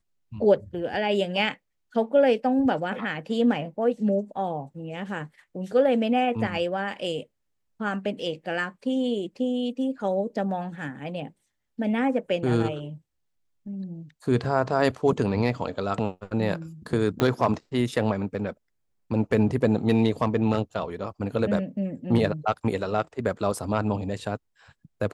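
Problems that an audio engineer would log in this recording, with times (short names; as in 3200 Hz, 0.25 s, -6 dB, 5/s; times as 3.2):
17.2 pop -10 dBFS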